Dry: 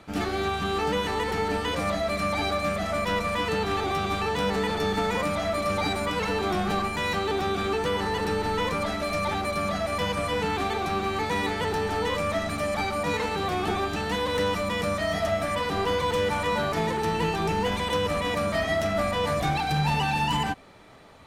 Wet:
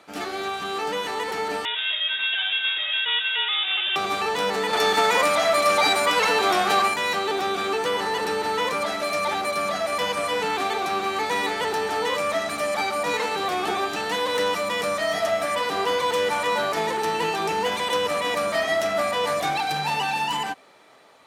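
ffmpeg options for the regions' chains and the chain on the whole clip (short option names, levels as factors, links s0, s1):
-filter_complex "[0:a]asettb=1/sr,asplit=3[s0][s1][s2];[s0]atrim=end=1.654[s3];[s1]atrim=start=1.65:end=3.96,asetpts=PTS-STARTPTS,afade=t=in:d=0.004:c=qsin,afade=t=out:st=2.306:d=0.004:c=qsin,highpass=f=320:p=1,lowpass=f=3300:t=q:w=0.5098,lowpass=f=3300:t=q:w=0.6013,lowpass=f=3300:t=q:w=0.9,lowpass=f=3300:t=q:w=2.563,afreqshift=-3900[s4];[s2]atrim=start=3.956[s5];[s3][s4]acrossfade=d=0.004:c1=hsin:c2=qsin[s6];[s6][s5]acrossfade=d=0.004:c1=qsin:c2=hsin,asettb=1/sr,asplit=3[s7][s8][s9];[s7]atrim=end=4.734[s10];[s8]atrim=start=4.73:end=6.94,asetpts=PTS-STARTPTS,afade=t=in:d=0.004:c=qsin,afade=t=out:st=2.206:d=0.004:c=qsin,lowshelf=f=270:g=-11,acontrast=51,aeval=exprs='val(0)+0.0178*(sin(2*PI*60*n/s)+sin(2*PI*2*60*n/s)/2+sin(2*PI*3*60*n/s)/3+sin(2*PI*4*60*n/s)/4+sin(2*PI*5*60*n/s)/5)':c=same[s11];[s9]atrim=start=6.936[s12];[s10][s11]acrossfade=d=0.004:c1=hsin:c2=qsin[s13];[s13][s12]acrossfade=d=0.004:c1=qsin:c2=hsin,highpass=110,bass=f=250:g=-15,treble=f=4000:g=2,dynaudnorm=f=390:g=9:m=1.5"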